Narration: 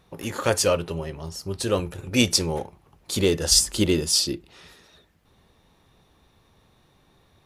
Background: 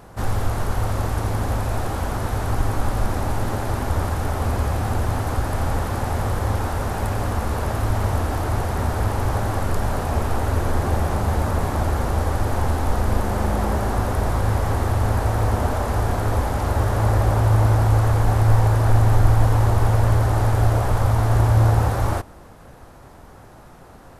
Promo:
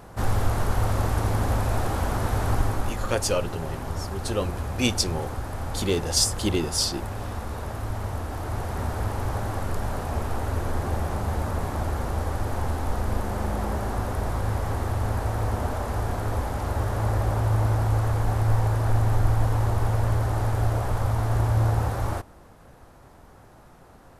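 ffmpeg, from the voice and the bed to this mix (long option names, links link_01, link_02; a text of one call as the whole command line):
ffmpeg -i stem1.wav -i stem2.wav -filter_complex "[0:a]adelay=2650,volume=-4dB[link_01];[1:a]volume=2dB,afade=type=out:start_time=2.52:duration=0.51:silence=0.398107,afade=type=in:start_time=8.27:duration=0.52:silence=0.707946[link_02];[link_01][link_02]amix=inputs=2:normalize=0" out.wav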